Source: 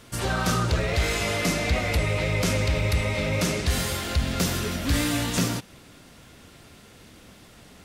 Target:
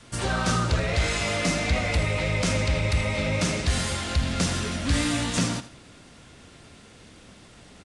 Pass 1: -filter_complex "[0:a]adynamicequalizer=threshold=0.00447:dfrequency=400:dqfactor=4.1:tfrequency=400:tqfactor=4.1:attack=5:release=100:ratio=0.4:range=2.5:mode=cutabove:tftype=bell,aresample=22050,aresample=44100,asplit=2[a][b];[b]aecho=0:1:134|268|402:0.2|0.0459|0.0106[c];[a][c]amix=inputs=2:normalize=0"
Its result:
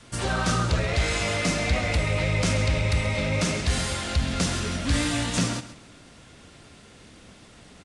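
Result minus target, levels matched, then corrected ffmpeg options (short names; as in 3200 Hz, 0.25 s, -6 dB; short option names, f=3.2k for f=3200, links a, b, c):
echo 53 ms late
-filter_complex "[0:a]adynamicequalizer=threshold=0.00447:dfrequency=400:dqfactor=4.1:tfrequency=400:tqfactor=4.1:attack=5:release=100:ratio=0.4:range=2.5:mode=cutabove:tftype=bell,aresample=22050,aresample=44100,asplit=2[a][b];[b]aecho=0:1:81|162|243:0.2|0.0459|0.0106[c];[a][c]amix=inputs=2:normalize=0"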